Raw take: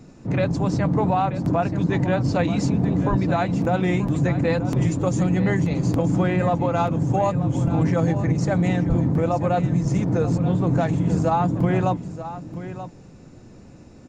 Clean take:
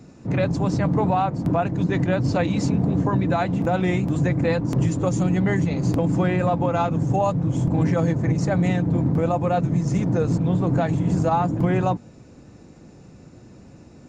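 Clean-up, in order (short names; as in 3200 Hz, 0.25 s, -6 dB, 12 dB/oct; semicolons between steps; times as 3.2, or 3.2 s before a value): 3.09–3.21 HPF 140 Hz 24 dB/oct; 8.88–9 HPF 140 Hz 24 dB/oct; expander -34 dBFS, range -21 dB; inverse comb 0.932 s -12.5 dB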